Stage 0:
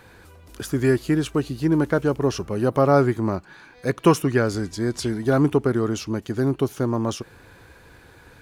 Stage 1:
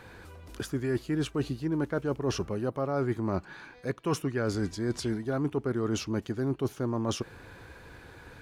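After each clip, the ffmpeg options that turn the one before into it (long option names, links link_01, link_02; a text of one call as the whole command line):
ffmpeg -i in.wav -af "highshelf=frequency=7000:gain=-7,areverse,acompressor=threshold=-26dB:ratio=10,areverse" out.wav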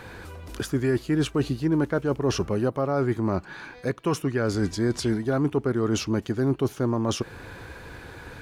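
ffmpeg -i in.wav -af "alimiter=limit=-22dB:level=0:latency=1:release=328,volume=7.5dB" out.wav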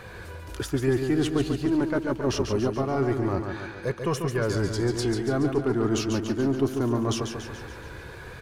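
ffmpeg -i in.wav -filter_complex "[0:a]asplit=2[link_01][link_02];[link_02]aeval=exprs='clip(val(0),-1,0.0531)':channel_layout=same,volume=-7dB[link_03];[link_01][link_03]amix=inputs=2:normalize=0,flanger=delay=1.7:depth=1.7:regen=-45:speed=0.24:shape=triangular,aecho=1:1:142|284|426|568|710|852|994:0.473|0.26|0.143|0.0787|0.0433|0.0238|0.0131" out.wav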